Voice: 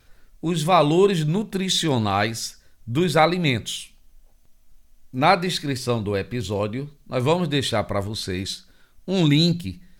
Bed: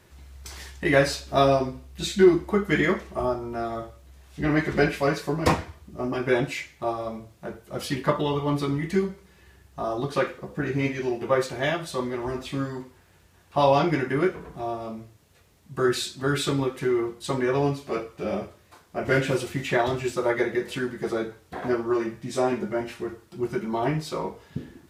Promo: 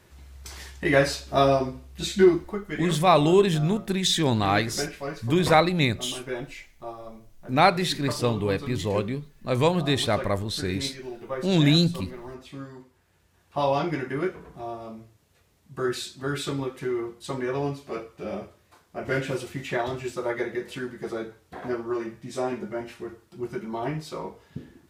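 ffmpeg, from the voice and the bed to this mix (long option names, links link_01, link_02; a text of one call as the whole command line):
ffmpeg -i stem1.wav -i stem2.wav -filter_complex "[0:a]adelay=2350,volume=-1.5dB[link_01];[1:a]volume=5dB,afade=type=out:start_time=2.24:duration=0.35:silence=0.334965,afade=type=in:start_time=12.9:duration=0.68:silence=0.530884[link_02];[link_01][link_02]amix=inputs=2:normalize=0" out.wav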